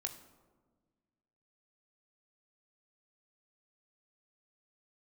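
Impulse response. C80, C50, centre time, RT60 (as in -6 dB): 13.0 dB, 11.0 dB, 15 ms, 1.4 s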